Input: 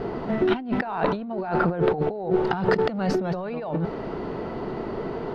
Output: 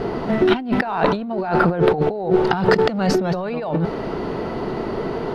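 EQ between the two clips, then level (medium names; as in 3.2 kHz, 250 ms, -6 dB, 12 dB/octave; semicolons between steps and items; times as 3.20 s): treble shelf 4.6 kHz +9 dB; +5.5 dB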